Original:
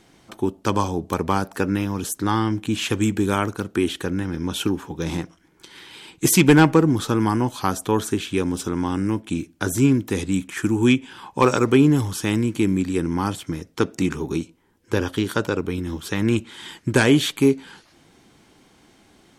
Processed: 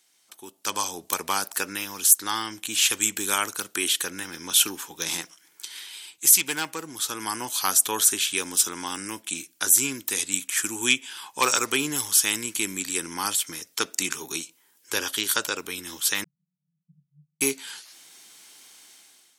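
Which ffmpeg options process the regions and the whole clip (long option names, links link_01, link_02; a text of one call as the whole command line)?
ffmpeg -i in.wav -filter_complex "[0:a]asettb=1/sr,asplit=3[link_01][link_02][link_03];[link_01]atrim=end=16.244[link_04];[link_02]atrim=start=16.24:end=17.41,asetpts=PTS-STARTPTS,afade=type=in:duration=0.004:curve=qsin,afade=type=out:start_time=1.166:duration=0.004:curve=qsin,acompressor=threshold=-26dB:ratio=4:attack=3.2:release=140:knee=1:detection=peak,asuperpass=centerf=160:order=12:qfactor=3.7[link_05];[link_03]atrim=start=17.406[link_06];[link_04][link_05]acrossfade=duration=0.004:curve1=hsin:curve2=qsin[link_07];[link_07][link_06]acrossfade=duration=0.004:curve1=qsin:curve2=hsin,aderivative,dynaudnorm=framelen=260:gausssize=5:maxgain=15dB,volume=-1dB" out.wav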